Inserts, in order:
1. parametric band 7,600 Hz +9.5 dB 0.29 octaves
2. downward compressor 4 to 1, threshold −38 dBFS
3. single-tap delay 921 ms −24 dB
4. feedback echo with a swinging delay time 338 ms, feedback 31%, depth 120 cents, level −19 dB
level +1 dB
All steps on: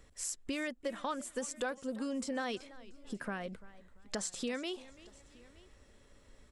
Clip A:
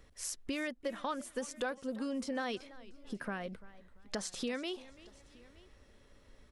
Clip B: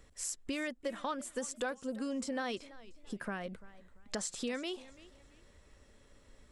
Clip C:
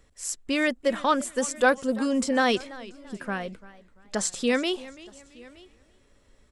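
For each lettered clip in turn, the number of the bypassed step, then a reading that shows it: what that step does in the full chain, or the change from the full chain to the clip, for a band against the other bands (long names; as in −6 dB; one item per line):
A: 1, 8 kHz band −3.0 dB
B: 3, change in momentary loudness spread −5 LU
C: 2, average gain reduction 8.5 dB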